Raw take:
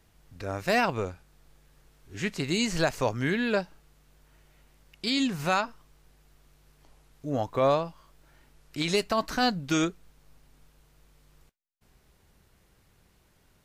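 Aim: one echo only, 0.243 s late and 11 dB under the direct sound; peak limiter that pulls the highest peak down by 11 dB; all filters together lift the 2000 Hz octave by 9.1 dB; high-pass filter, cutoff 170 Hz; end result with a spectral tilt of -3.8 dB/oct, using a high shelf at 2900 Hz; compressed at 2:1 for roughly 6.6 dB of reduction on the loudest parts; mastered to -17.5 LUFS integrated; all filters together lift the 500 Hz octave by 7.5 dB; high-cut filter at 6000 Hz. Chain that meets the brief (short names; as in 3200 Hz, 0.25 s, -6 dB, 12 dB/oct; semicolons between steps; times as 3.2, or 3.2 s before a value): HPF 170 Hz; LPF 6000 Hz; bell 500 Hz +8.5 dB; bell 2000 Hz +9 dB; high shelf 2900 Hz +6 dB; compressor 2:1, threshold -24 dBFS; limiter -21 dBFS; echo 0.243 s -11 dB; gain +14.5 dB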